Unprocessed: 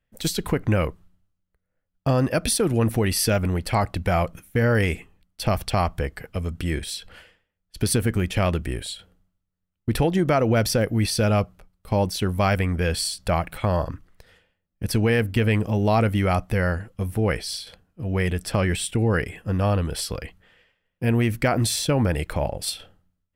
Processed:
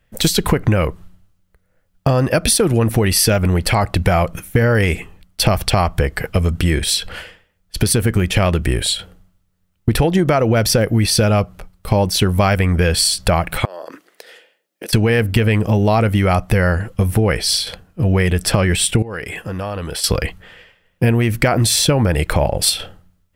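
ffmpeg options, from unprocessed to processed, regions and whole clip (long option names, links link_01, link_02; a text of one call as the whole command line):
ffmpeg -i in.wav -filter_complex "[0:a]asettb=1/sr,asplit=3[link_01][link_02][link_03];[link_01]atrim=end=13.654[link_04];[link_02]atrim=start=13.65:end=14.93,asetpts=PTS-STARTPTS,afade=type=in:duration=0.004:curve=qsin,afade=type=out:start_time=1.276:duration=0.004:curve=qsin,highpass=frequency=330:width=0.5412,highpass=frequency=330:width=1.3066,equalizer=frequency=1100:width_type=o:width=0.96:gain=-6,acompressor=threshold=-40dB:ratio=16:attack=3.2:release=140:knee=1:detection=peak[link_05];[link_03]atrim=start=14.926[link_06];[link_04][link_05]acrossfade=duration=0.004:curve1=hsin:curve2=qsin[link_07];[link_07][link_06]acrossfade=duration=0.004:curve1=qsin:curve2=hsin,asettb=1/sr,asplit=3[link_08][link_09][link_10];[link_08]atrim=end=19.024[link_11];[link_09]atrim=start=19.02:end=20.04,asetpts=PTS-STARTPTS,afade=type=in:duration=0.004:curve=qsin,afade=type=out:start_time=1.016:duration=0.004:curve=qsin,lowshelf=frequency=230:gain=-10,acompressor=threshold=-38dB:ratio=5:attack=3.2:release=140:knee=1:detection=peak[link_12];[link_10]atrim=start=20.036[link_13];[link_11][link_12]acrossfade=duration=0.004:curve1=hsin:curve2=qsin[link_14];[link_14][link_13]acrossfade=duration=0.004:curve1=qsin:curve2=hsin,equalizer=frequency=260:width=4.5:gain=-4,acompressor=threshold=-27dB:ratio=6,alimiter=level_in=17dB:limit=-1dB:release=50:level=0:latency=1,volume=-1.5dB" out.wav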